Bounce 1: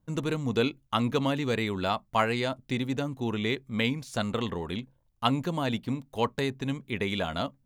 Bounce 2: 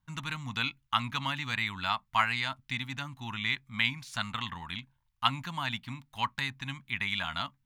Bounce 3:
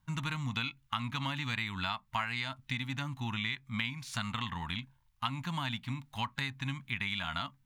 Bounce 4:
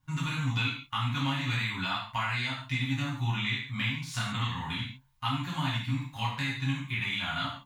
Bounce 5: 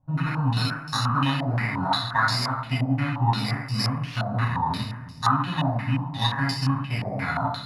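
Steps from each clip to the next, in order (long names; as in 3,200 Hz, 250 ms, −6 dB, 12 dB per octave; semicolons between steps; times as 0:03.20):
drawn EQ curve 140 Hz 0 dB, 270 Hz −7 dB, 440 Hz −24 dB, 900 Hz +6 dB, 2,100 Hz +10 dB, 3,600 Hz +8 dB, 7,400 Hz +3 dB; level −6.5 dB
harmonic and percussive parts rebalanced harmonic +7 dB; downward compressor 4 to 1, threshold −32 dBFS, peak gain reduction 11.5 dB
convolution reverb, pre-delay 3 ms, DRR −7 dB; level −4 dB
samples in bit-reversed order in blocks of 16 samples; echo with a time of its own for lows and highs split 360 Hz, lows 503 ms, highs 136 ms, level −11.5 dB; low-pass on a step sequencer 5.7 Hz 660–5,300 Hz; level +6.5 dB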